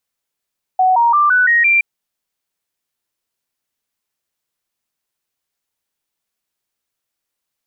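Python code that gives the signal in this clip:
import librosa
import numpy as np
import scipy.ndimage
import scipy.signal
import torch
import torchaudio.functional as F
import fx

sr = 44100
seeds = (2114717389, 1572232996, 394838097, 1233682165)

y = fx.stepped_sweep(sr, from_hz=745.0, direction='up', per_octave=3, tones=6, dwell_s=0.17, gap_s=0.0, level_db=-9.0)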